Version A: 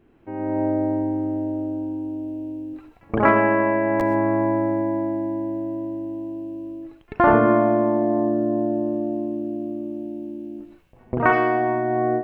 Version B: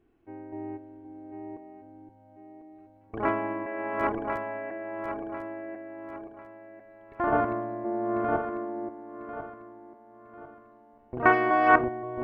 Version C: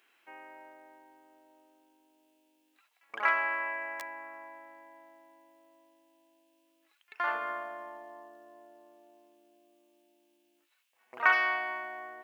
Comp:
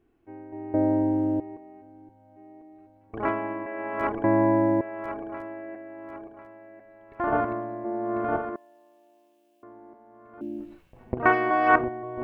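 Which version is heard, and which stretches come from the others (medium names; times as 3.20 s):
B
0.74–1.40 s: from A
4.24–4.81 s: from A
8.56–9.63 s: from C
10.41–11.14 s: from A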